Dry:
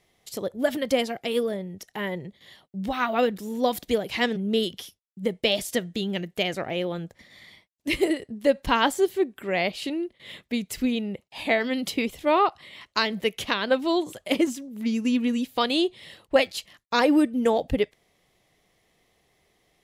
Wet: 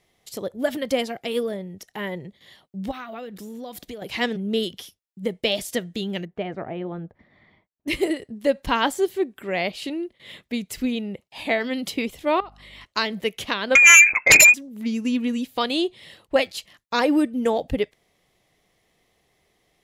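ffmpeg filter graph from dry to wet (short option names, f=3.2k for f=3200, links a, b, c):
-filter_complex "[0:a]asettb=1/sr,asplit=3[a][b][c];[a]atrim=end=2.914[d];[b]atrim=start=2.91:end=4.02,asetpts=PTS-STARTPTS,afade=t=in:d=0.004:c=qsin,afade=t=out:st=1.106:d=0.004:c=qsin,bandreject=f=930:w=14,acompressor=threshold=-33dB:ratio=6:attack=3.2:release=140:knee=1:detection=peak[e];[c]atrim=start=4.016[f];[d][e]acrossfade=d=0.004:c1=hsin:c2=qsin[g];[g][f]acrossfade=d=0.004:c1=qsin:c2=hsin,asettb=1/sr,asplit=3[h][i][j];[h]atrim=end=6.254[k];[i]atrim=start=6.25:end=7.88,asetpts=PTS-STARTPTS,afade=t=in:d=0.004:c=qsin,afade=t=out:st=1.626:d=0.004:c=qsin,lowpass=1.3k,bandreject=f=530:w=9.6[l];[j]atrim=start=7.876[m];[k][l]acrossfade=d=0.004:c1=hsin:c2=qsin[n];[n][m]acrossfade=d=0.004:c1=qsin:c2=hsin,asettb=1/sr,asplit=3[o][p][q];[o]atrim=end=12.404[r];[p]atrim=start=12.4:end=12.85,asetpts=PTS-STARTPTS,afade=t=in:d=0.004:c=qsin,afade=t=out:st=0.446:d=0.004:c=qsin,acompressor=threshold=-36dB:ratio=6:attack=3.2:release=140:knee=1:detection=peak,aeval=exprs='val(0)+0.00282*(sin(2*PI*50*n/s)+sin(2*PI*2*50*n/s)/2+sin(2*PI*3*50*n/s)/3+sin(2*PI*4*50*n/s)/4+sin(2*PI*5*50*n/s)/5)':c=same[s];[q]atrim=start=12.846[t];[r][s]acrossfade=d=0.004:c1=hsin:c2=qsin[u];[u][t]acrossfade=d=0.004:c1=qsin:c2=hsin,asettb=1/sr,asplit=3[v][w][x];[v]atrim=end=13.754[y];[w]atrim=start=13.75:end=14.54,asetpts=PTS-STARTPTS,afade=t=in:d=0.004:c=qsin,afade=t=out:st=0.786:d=0.004:c=qsin,lowpass=f=2.3k:t=q:w=0.5098,lowpass=f=2.3k:t=q:w=0.6013,lowpass=f=2.3k:t=q:w=0.9,lowpass=f=2.3k:t=q:w=2.563,afreqshift=-2700,acontrast=53,aeval=exprs='0.473*sin(PI/2*3.16*val(0)/0.473)':c=same[z];[x]atrim=start=14.536[aa];[y][z]acrossfade=d=0.004:c1=hsin:c2=qsin[ab];[ab][aa]acrossfade=d=0.004:c1=qsin:c2=hsin"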